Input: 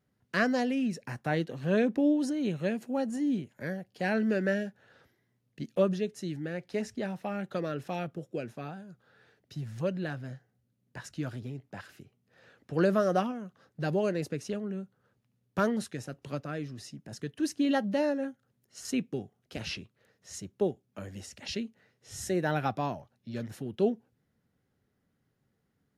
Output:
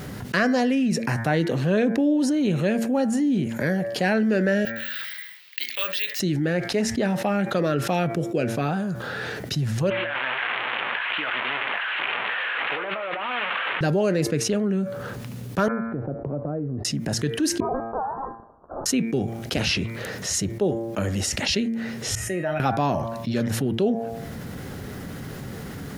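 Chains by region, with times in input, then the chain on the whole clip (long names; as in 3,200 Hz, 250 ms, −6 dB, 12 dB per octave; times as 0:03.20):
0:04.65–0:06.20: flat-topped band-pass 2,900 Hz, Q 1.1 + bad sample-rate conversion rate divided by 2×, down filtered, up zero stuff
0:09.90–0:13.81: linear delta modulator 16 kbit/s, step −37.5 dBFS + high-pass filter 1,200 Hz + compressor whose output falls as the input rises −51 dBFS
0:15.68–0:16.85: transistor ladder low-pass 900 Hz, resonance 25% + downward compressor 2 to 1, threshold −57 dBFS
0:17.60–0:18.86: Butterworth high-pass 2,300 Hz 96 dB per octave + voice inversion scrambler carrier 3,500 Hz
0:22.15–0:22.60: high shelf with overshoot 3,200 Hz −6.5 dB, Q 3 + tuned comb filter 630 Hz, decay 0.38 s, mix 90%
whole clip: hum removal 114.2 Hz, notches 21; envelope flattener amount 70%; level +3 dB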